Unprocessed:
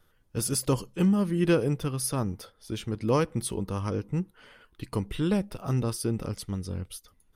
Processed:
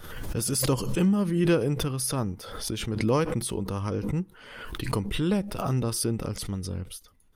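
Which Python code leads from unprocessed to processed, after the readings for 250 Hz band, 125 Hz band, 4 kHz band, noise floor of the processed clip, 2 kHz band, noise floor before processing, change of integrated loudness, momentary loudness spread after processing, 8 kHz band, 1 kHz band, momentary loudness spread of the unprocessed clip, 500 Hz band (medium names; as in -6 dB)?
+1.0 dB, +1.0 dB, +4.5 dB, -55 dBFS, +3.0 dB, -66 dBFS, +1.0 dB, 12 LU, +2.5 dB, +1.5 dB, 13 LU, +1.0 dB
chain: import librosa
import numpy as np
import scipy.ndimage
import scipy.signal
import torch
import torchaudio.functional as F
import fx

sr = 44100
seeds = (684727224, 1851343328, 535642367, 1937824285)

y = fx.pre_swell(x, sr, db_per_s=44.0)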